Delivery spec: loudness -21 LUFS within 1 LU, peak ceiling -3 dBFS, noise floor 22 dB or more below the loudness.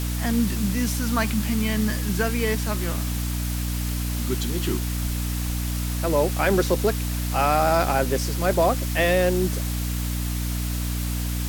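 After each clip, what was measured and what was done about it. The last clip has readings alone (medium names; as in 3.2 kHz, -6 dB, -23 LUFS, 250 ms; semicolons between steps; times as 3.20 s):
hum 60 Hz; highest harmonic 300 Hz; hum level -24 dBFS; noise floor -27 dBFS; noise floor target -46 dBFS; loudness -24.0 LUFS; peak level -7.5 dBFS; loudness target -21.0 LUFS
-> de-hum 60 Hz, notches 5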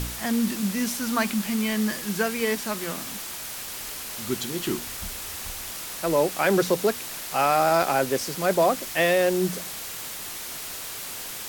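hum not found; noise floor -36 dBFS; noise floor target -48 dBFS
-> noise reduction 12 dB, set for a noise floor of -36 dBFS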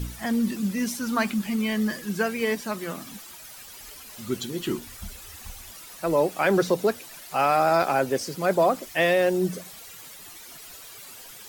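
noise floor -44 dBFS; noise floor target -47 dBFS
-> noise reduction 6 dB, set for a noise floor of -44 dBFS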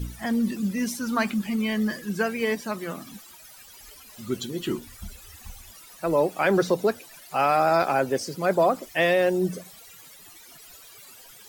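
noise floor -48 dBFS; loudness -25.0 LUFS; peak level -9.5 dBFS; loudness target -21.0 LUFS
-> trim +4 dB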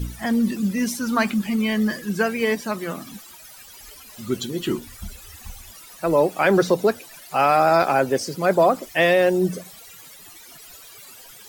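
loudness -21.0 LUFS; peak level -5.5 dBFS; noise floor -45 dBFS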